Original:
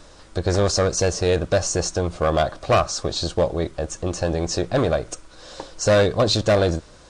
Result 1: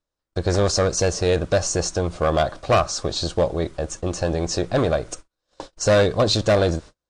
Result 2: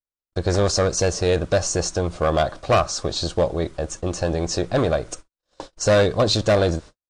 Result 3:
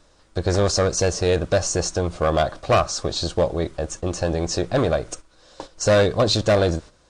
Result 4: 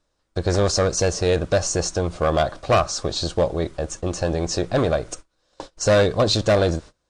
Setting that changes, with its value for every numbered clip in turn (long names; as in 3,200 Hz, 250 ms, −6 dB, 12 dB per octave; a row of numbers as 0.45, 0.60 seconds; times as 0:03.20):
noise gate, range: −39, −57, −10, −26 decibels